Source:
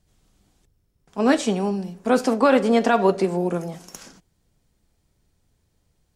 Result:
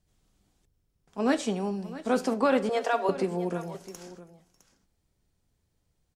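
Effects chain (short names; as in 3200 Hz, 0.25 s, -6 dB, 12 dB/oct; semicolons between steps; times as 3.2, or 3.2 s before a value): 2.69–3.09 steep high-pass 420 Hz; echo 0.659 s -16 dB; gain -7 dB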